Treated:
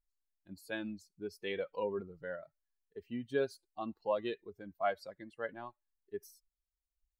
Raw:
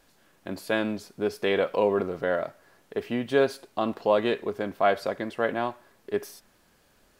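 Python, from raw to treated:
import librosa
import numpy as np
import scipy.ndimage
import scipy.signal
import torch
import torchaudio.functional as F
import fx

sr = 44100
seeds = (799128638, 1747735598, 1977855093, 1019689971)

y = fx.bin_expand(x, sr, power=2.0)
y = F.gain(torch.from_numpy(y), -8.5).numpy()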